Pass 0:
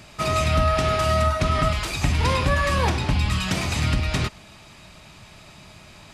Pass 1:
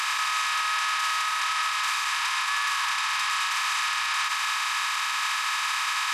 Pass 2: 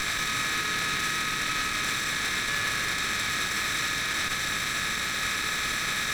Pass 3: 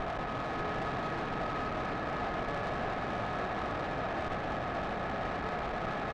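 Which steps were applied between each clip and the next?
compressor on every frequency bin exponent 0.2; inverse Chebyshev high-pass filter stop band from 570 Hz, stop band 40 dB; brickwall limiter −17.5 dBFS, peak gain reduction 10 dB
lower of the sound and its delayed copy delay 0.52 ms
low-pass with resonance 730 Hz, resonance Q 4.9; tube saturation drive 36 dB, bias 0.55; single-tap delay 593 ms −5.5 dB; level +4.5 dB

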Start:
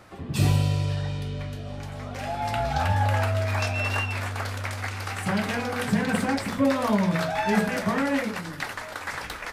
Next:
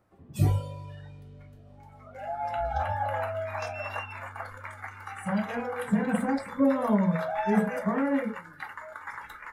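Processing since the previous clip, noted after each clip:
noise reduction from a noise print of the clip's start 16 dB
parametric band 3,900 Hz −11.5 dB 2.7 octaves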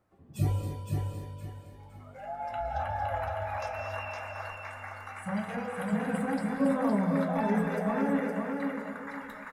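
on a send: repeating echo 513 ms, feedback 31%, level −4 dB
on the sum: reverb whose tail is shaped and stops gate 300 ms rising, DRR 6 dB
level −4.5 dB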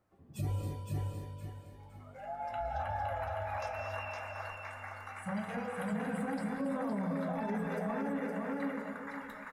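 brickwall limiter −24.5 dBFS, peak gain reduction 8.5 dB
level −3 dB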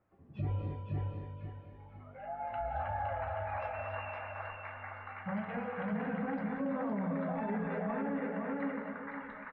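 inverse Chebyshev low-pass filter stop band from 8,400 Hz, stop band 60 dB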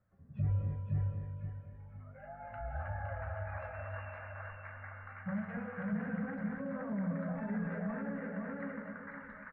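drawn EQ curve 140 Hz 0 dB, 220 Hz −3 dB, 330 Hz −17 dB, 570 Hz −6 dB, 820 Hz −14 dB, 1,600 Hz −3 dB, 3,100 Hz −17 dB
level +3 dB

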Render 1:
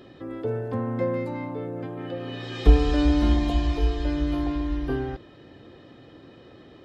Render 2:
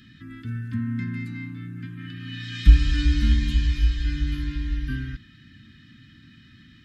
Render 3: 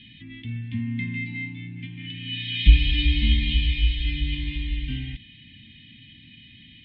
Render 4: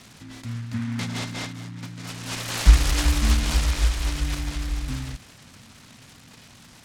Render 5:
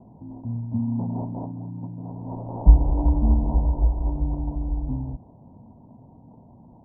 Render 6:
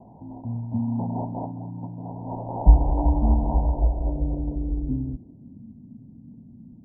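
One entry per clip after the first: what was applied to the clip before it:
Chebyshev band-stop filter 230–1,600 Hz, order 3; level +3.5 dB
drawn EQ curve 240 Hz 0 dB, 430 Hz −5 dB, 780 Hz +13 dB, 1,400 Hz −26 dB, 2,100 Hz +10 dB, 3,400 Hz +12 dB, 6,400 Hz −29 dB; level −1 dB
short delay modulated by noise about 1,500 Hz, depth 0.11 ms
Chebyshev low-pass with heavy ripple 970 Hz, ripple 3 dB; level +4 dB
low-pass filter sweep 830 Hz → 230 Hz, 0:03.58–0:05.70; level −1 dB

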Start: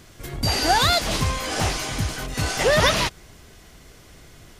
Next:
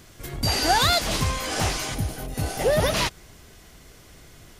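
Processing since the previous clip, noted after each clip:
gain on a spectral selection 0:01.94–0:02.94, 900–9,000 Hz −8 dB
high-shelf EQ 10,000 Hz +4.5 dB
level −1.5 dB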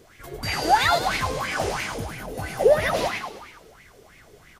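echo with shifted repeats 103 ms, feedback 56%, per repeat +54 Hz, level −7 dB
auto-filter bell 3 Hz 420–2,300 Hz +18 dB
level −8 dB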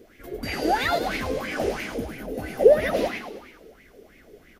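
graphic EQ with 10 bands 125 Hz −10 dB, 250 Hz +8 dB, 500 Hz +4 dB, 1,000 Hz −10 dB, 4,000 Hz −4 dB, 8,000 Hz −9 dB

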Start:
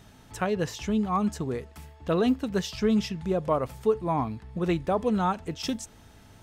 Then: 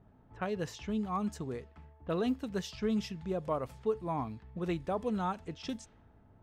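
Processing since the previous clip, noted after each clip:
low-pass that shuts in the quiet parts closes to 840 Hz, open at −25 dBFS
level −8 dB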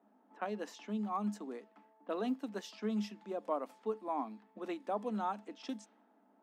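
Chebyshev high-pass with heavy ripple 200 Hz, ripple 6 dB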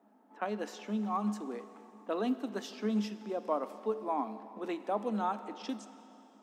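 dense smooth reverb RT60 3.2 s, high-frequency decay 0.95×, DRR 12 dB
level +3.5 dB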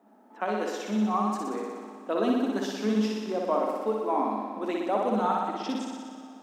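flutter between parallel walls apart 10.4 metres, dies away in 1.4 s
level +4.5 dB

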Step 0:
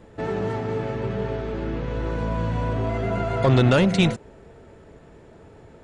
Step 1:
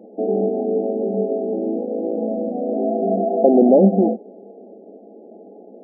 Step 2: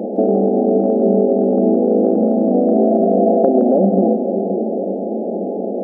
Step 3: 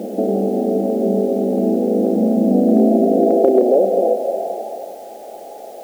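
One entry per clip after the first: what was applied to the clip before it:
brick-wall band-pass 190–840 Hz; level +8 dB
compressor on every frequency bin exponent 0.6; downward compressor, threshold −16 dBFS, peak gain reduction 9.5 dB; echo with a time of its own for lows and highs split 580 Hz, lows 531 ms, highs 164 ms, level −8 dB; level +5 dB
high-pass filter sweep 81 Hz → 990 Hz, 0:01.30–0:05.02; in parallel at −6 dB: bit-depth reduction 6 bits, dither triangular; on the sum: level −7.5 dB

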